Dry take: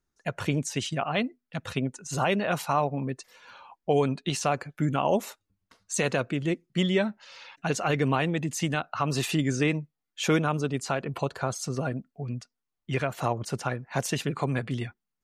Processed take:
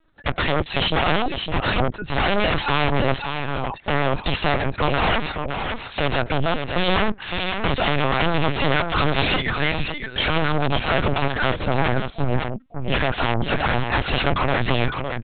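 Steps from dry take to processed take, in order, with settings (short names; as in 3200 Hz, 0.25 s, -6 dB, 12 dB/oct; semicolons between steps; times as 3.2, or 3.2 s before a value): 9.36–9.8 HPF 800 Hz 12 dB/oct; limiter -19.5 dBFS, peak gain reduction 7.5 dB; sine folder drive 12 dB, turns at -19.5 dBFS; on a send: echo 0.56 s -6 dB; on the sum: LPC vocoder at 8 kHz pitch kept; gain +3 dB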